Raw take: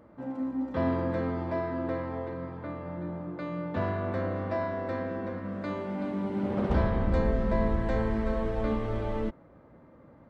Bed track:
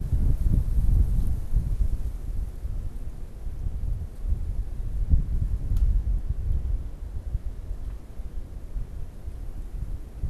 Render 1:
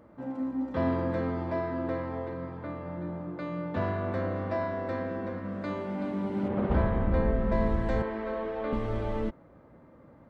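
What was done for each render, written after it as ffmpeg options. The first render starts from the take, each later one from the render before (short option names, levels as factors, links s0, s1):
-filter_complex "[0:a]asettb=1/sr,asplit=3[s0][s1][s2];[s0]atrim=end=6.484[s3];[s1]atrim=start=6.48:end=7.52,asetpts=PTS-STARTPTS,afade=t=in:d=0.004:c=qsin,afade=t=out:st=1.036:d=0.004:c=qsin,lowpass=2800[s4];[s2]atrim=start=7.516[s5];[s3][s4]acrossfade=d=0.004:c1=hsin:c2=qsin[s6];[s6][s5]acrossfade=d=0.004:c1=qsin:c2=hsin,asettb=1/sr,asplit=3[s7][s8][s9];[s7]atrim=end=8.024[s10];[s8]atrim=start=8.02:end=8.73,asetpts=PTS-STARTPTS,afade=t=in:d=0.004:c=qsin,afade=t=out:st=0.706:d=0.004:c=qsin,acrossover=split=260 4200:gain=0.112 1 0.1[s11][s12][s13];[s11][s12][s13]amix=inputs=3:normalize=0[s14];[s9]atrim=start=8.726[s15];[s10][s14]acrossfade=d=0.004:c1=hsin:c2=qsin[s16];[s16][s15]acrossfade=d=0.004:c1=qsin:c2=hsin"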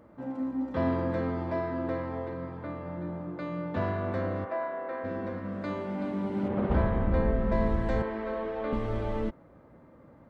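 -filter_complex "[0:a]asplit=3[s0][s1][s2];[s0]afade=t=out:st=4.44:d=0.02[s3];[s1]highpass=470,lowpass=2200,afade=t=in:st=4.44:d=0.02,afade=t=out:st=5.03:d=0.02[s4];[s2]afade=t=in:st=5.03:d=0.02[s5];[s3][s4][s5]amix=inputs=3:normalize=0"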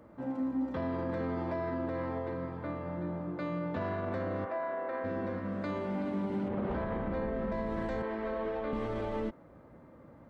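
-filter_complex "[0:a]acrossover=split=160[s0][s1];[s0]acompressor=threshold=0.00794:ratio=6[s2];[s1]alimiter=level_in=1.5:limit=0.0631:level=0:latency=1:release=38,volume=0.668[s3];[s2][s3]amix=inputs=2:normalize=0"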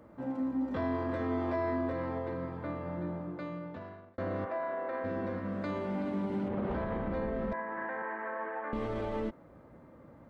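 -filter_complex "[0:a]asettb=1/sr,asplit=3[s0][s1][s2];[s0]atrim=end=0.694[s3];[s1]atrim=start=0.69:end=1.93,asetpts=PTS-STARTPTS,afade=t=in:d=0.004:c=qsin,afade=t=out:st=1.236:d=0.004:c=qsin,asplit=2[s4][s5];[s5]adelay=20,volume=0.794[s6];[s4][s6]amix=inputs=2:normalize=0,atrim=end_sample=54684[s7];[s2]atrim=start=1.926[s8];[s3][s7]acrossfade=d=0.004:c1=hsin:c2=qsin[s9];[s9][s8]acrossfade=d=0.004:c1=qsin:c2=hsin,asettb=1/sr,asplit=3[s10][s11][s12];[s10]atrim=end=7.534[s13];[s11]atrim=start=7.53:end=8.73,asetpts=PTS-STARTPTS,afade=t=in:d=0.004:c=qsin,afade=t=out:st=1.196:d=0.004:c=qsin,highpass=410,equalizer=f=420:t=q:w=4:g=-6,equalizer=f=610:t=q:w=4:g=-5,equalizer=f=900:t=q:w=4:g=6,equalizer=f=1700:t=q:w=4:g=10,lowpass=f=2100:w=0.5412,lowpass=f=2100:w=1.3066[s14];[s12]atrim=start=8.726[s15];[s13][s14]acrossfade=d=0.004:c1=hsin:c2=qsin[s16];[s16][s15]acrossfade=d=0.004:c1=qsin:c2=hsin,asplit=2[s17][s18];[s17]atrim=end=4.18,asetpts=PTS-STARTPTS,afade=t=out:st=3.04:d=1.14[s19];[s18]atrim=start=4.18,asetpts=PTS-STARTPTS,afade=t=in:d=0.004:c=hsin[s20];[s19][s20]concat=n=2:v=0:a=1"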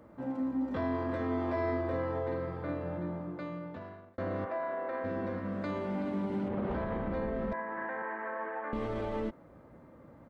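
-filter_complex "[0:a]asplit=3[s0][s1][s2];[s0]afade=t=out:st=1.55:d=0.02[s3];[s1]asplit=2[s4][s5];[s5]adelay=48,volume=0.631[s6];[s4][s6]amix=inputs=2:normalize=0,afade=t=in:st=1.55:d=0.02,afade=t=out:st=2.97:d=0.02[s7];[s2]afade=t=in:st=2.97:d=0.02[s8];[s3][s7][s8]amix=inputs=3:normalize=0"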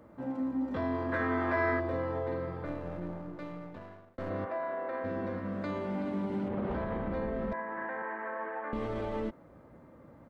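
-filter_complex "[0:a]asettb=1/sr,asplit=3[s0][s1][s2];[s0]atrim=end=1.124[s3];[s1]atrim=start=1.12:end=1.8,asetpts=PTS-STARTPTS,afade=t=in:d=0.004:c=qsin,afade=t=out:st=0.676:d=0.004:c=qsin,equalizer=f=1600:t=o:w=0.99:g=13.5[s4];[s2]atrim=start=1.796[s5];[s3][s4]acrossfade=d=0.004:c1=hsin:c2=qsin[s6];[s6][s5]acrossfade=d=0.004:c1=qsin:c2=hsin,asettb=1/sr,asplit=3[s7][s8][s9];[s7]atrim=end=2.654[s10];[s8]atrim=start=2.65:end=4.3,asetpts=PTS-STARTPTS,afade=t=in:d=0.004:c=qsin,afade=t=out:st=1.646:d=0.004:c=qsin,aeval=exprs='if(lt(val(0),0),0.447*val(0),val(0))':c=same[s11];[s9]atrim=start=4.296[s12];[s10][s11]acrossfade=d=0.004:c1=hsin:c2=qsin[s13];[s13][s12]acrossfade=d=0.004:c1=qsin:c2=hsin"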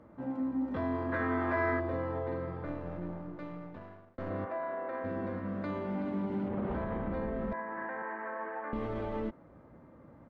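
-af "lowpass=f=2500:p=1,equalizer=f=520:t=o:w=0.77:g=-2"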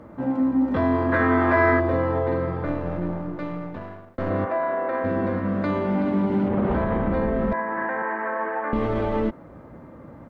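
-af "volume=3.98"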